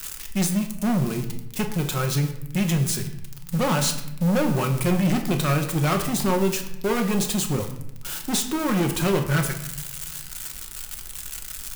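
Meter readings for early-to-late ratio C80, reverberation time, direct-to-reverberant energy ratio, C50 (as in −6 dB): 11.5 dB, 0.85 s, 3.5 dB, 9.0 dB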